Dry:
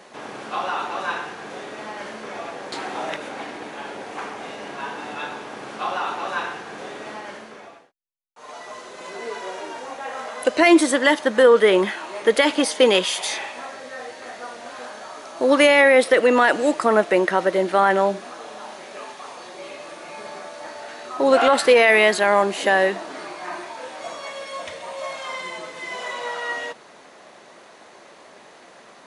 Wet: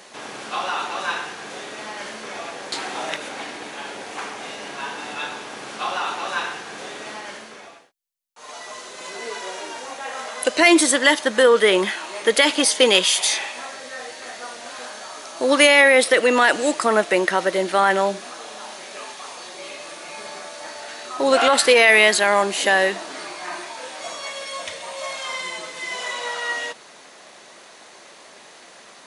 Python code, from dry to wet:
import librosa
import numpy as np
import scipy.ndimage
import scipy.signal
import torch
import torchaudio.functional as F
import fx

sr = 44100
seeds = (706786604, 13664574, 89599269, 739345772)

y = fx.high_shelf(x, sr, hz=2300.0, db=11.0)
y = y * 10.0 ** (-2.0 / 20.0)